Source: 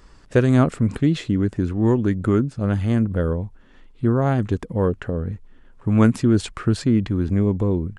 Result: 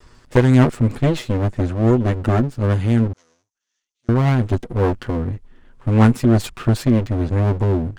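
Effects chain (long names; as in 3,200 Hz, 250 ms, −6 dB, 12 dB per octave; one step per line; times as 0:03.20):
lower of the sound and its delayed copy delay 8.2 ms
0:03.13–0:04.09: resonant band-pass 6,200 Hz, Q 7.3
level +3 dB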